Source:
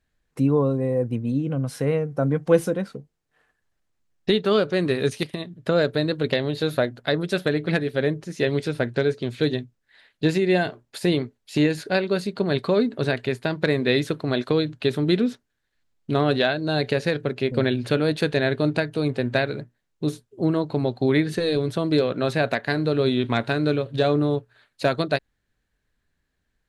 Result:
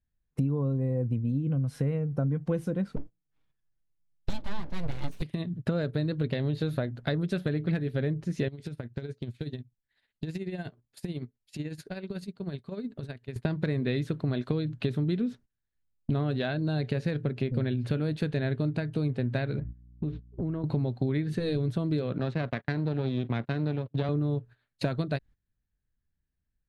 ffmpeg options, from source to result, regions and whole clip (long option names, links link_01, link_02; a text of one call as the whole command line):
ffmpeg -i in.wav -filter_complex "[0:a]asettb=1/sr,asplit=3[link_01][link_02][link_03];[link_01]atrim=end=2.964[link_04];[link_02]atrim=start=2.96:end=5.22,asetpts=PTS-STARTPTS,afade=type=in:duration=0.004:curve=qsin,afade=type=out:start_time=2.256:duration=0.004:curve=qsin,bandreject=frequency=60:width_type=h:width=6,bandreject=frequency=120:width_type=h:width=6,bandreject=frequency=180:width_type=h:width=6,bandreject=frequency=240:width_type=h:width=6,bandreject=frequency=300:width_type=h:width=6,bandreject=frequency=360:width_type=h:width=6,aecho=1:1:6.5:0.66,atrim=end_sample=99666,aeval=exprs='abs(val(0))':channel_layout=same[link_05];[link_03]atrim=start=5.216[link_06];[link_04][link_05]acrossfade=duration=0.004:curve1=hsin:curve2=qsin[link_07];[link_07][link_06]acrossfade=duration=0.004:curve1=qsin:curve2=hsin,asettb=1/sr,asplit=3[link_08][link_09][link_10];[link_08]atrim=end=8.484[link_11];[link_09]atrim=start=8.48:end=13.36,asetpts=PTS-STARTPTS,afade=type=in:duration=0.004:curve=qsin,afade=type=out:start_time=4.876:duration=0.004:curve=qsin,aemphasis=mode=production:type=cd,acompressor=threshold=-37dB:ratio=5:attack=3.2:release=140:knee=1:detection=peak,tremolo=f=16:d=0.62[link_12];[link_10]atrim=start=13.356[link_13];[link_11][link_12]acrossfade=duration=0.004:curve1=hsin:curve2=qsin[link_14];[link_14][link_13]acrossfade=duration=0.004:curve1=qsin:curve2=hsin,asettb=1/sr,asplit=3[link_15][link_16][link_17];[link_15]atrim=end=19.594[link_18];[link_16]atrim=start=19.59:end=20.64,asetpts=PTS-STARTPTS,afade=type=in:duration=0.004:curve=qsin,afade=type=out:start_time=1.046:duration=0.004:curve=qsin,lowpass=frequency=3000:width=0.5412,lowpass=frequency=3000:width=1.3066,aeval=exprs='val(0)+0.00501*(sin(2*PI*60*n/s)+sin(2*PI*2*60*n/s)/2+sin(2*PI*3*60*n/s)/3+sin(2*PI*4*60*n/s)/4+sin(2*PI*5*60*n/s)/5)':channel_layout=same,acompressor=threshold=-35dB:ratio=4:attack=3.2:release=140:knee=1:detection=peak[link_19];[link_17]atrim=start=20.636[link_20];[link_18][link_19]acrossfade=duration=0.004:curve1=hsin:curve2=qsin[link_21];[link_21][link_20]acrossfade=duration=0.004:curve1=qsin:curve2=hsin,asettb=1/sr,asplit=3[link_22][link_23][link_24];[link_22]atrim=end=22.184[link_25];[link_23]atrim=start=22.18:end=24.09,asetpts=PTS-STARTPTS,afade=type=in:duration=0.004:curve=qsin,afade=type=out:start_time=1.906:duration=0.004:curve=qsin,aeval=exprs='if(lt(val(0),0),0.251*val(0),val(0))':channel_layout=same,agate=range=-31dB:threshold=-35dB:ratio=16:release=100:detection=peak,highpass=120,lowpass=4300[link_26];[link_24]atrim=start=24.086[link_27];[link_25][link_26]acrossfade=duration=0.004:curve1=hsin:curve2=qsin[link_28];[link_28][link_27]acrossfade=duration=0.004:curve1=qsin:curve2=hsin,agate=range=-18dB:threshold=-42dB:ratio=16:detection=peak,bass=frequency=250:gain=13,treble=frequency=4000:gain=-4,acompressor=threshold=-27dB:ratio=5" out.wav